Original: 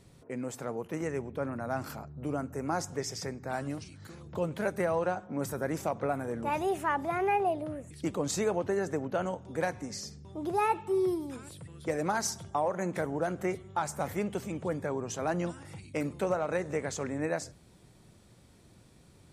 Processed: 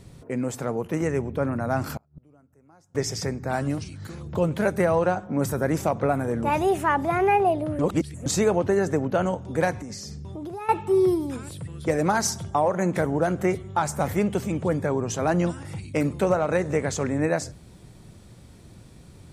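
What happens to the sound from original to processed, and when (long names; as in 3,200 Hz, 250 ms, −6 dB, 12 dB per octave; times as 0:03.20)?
0:01.97–0:02.95: gate with flip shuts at −36 dBFS, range −32 dB
0:07.79–0:08.26: reverse
0:09.77–0:10.69: downward compressor, threshold −41 dBFS
whole clip: low-shelf EQ 190 Hz +6.5 dB; level +7 dB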